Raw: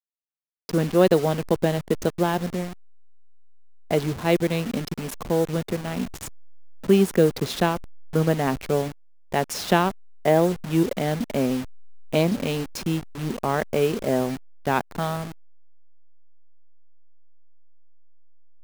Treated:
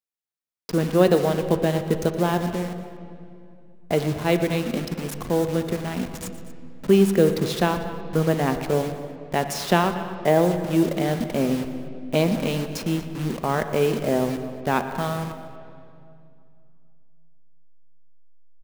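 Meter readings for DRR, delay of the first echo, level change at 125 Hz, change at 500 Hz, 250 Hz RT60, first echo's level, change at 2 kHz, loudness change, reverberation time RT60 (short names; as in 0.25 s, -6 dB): 7.5 dB, 0.117 s, +1.0 dB, +1.0 dB, 3.1 s, -15.5 dB, +0.5 dB, +1.0 dB, 2.5 s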